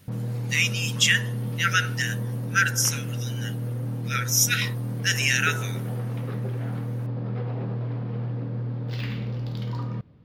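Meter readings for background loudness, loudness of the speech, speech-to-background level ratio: −30.5 LKFS, −23.5 LKFS, 7.0 dB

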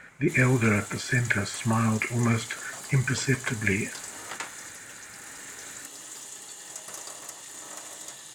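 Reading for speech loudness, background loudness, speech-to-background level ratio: −26.5 LKFS, −38.5 LKFS, 12.0 dB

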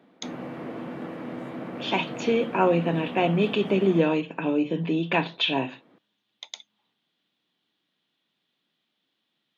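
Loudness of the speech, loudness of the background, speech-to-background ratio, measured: −24.5 LKFS, −36.5 LKFS, 12.0 dB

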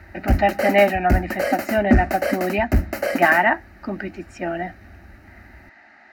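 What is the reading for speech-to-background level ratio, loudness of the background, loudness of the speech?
2.5 dB, −24.0 LKFS, −21.5 LKFS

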